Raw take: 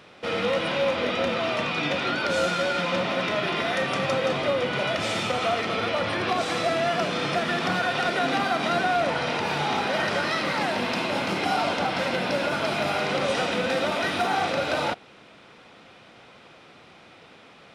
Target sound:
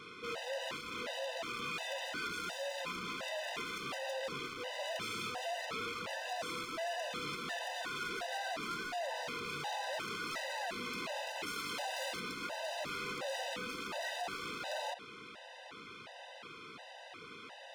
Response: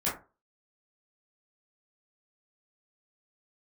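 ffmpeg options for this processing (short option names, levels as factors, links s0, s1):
-filter_complex "[0:a]asettb=1/sr,asplit=3[s0][s1][s2];[s0]atrim=end=11.464[s3];[s1]atrim=start=11.46:end=12.2,asetpts=PTS-STARTPTS,afade=t=in:d=0.004:c=qsin,afade=t=out:st=0.736:d=0.004:c=qsin,highshelf=f=4200:g=10.5[s4];[s2]atrim=start=12.196[s5];[s3][s4]acrossfade=d=0.004:c1=hsin:c2=qsin[s6];[s6][s5]acrossfade=d=0.004:c1=qsin:c2=hsin,volume=26.6,asoftclip=hard,volume=0.0376,alimiter=level_in=4.73:limit=0.0631:level=0:latency=1:release=18,volume=0.211,lowshelf=f=300:g=-8.5,afftfilt=real='re*gt(sin(2*PI*1.4*pts/sr)*(1-2*mod(floor(b*sr/1024/510),2)),0)':imag='im*gt(sin(2*PI*1.4*pts/sr)*(1-2*mod(floor(b*sr/1024/510),2)),0)':win_size=1024:overlap=0.75,volume=1.5"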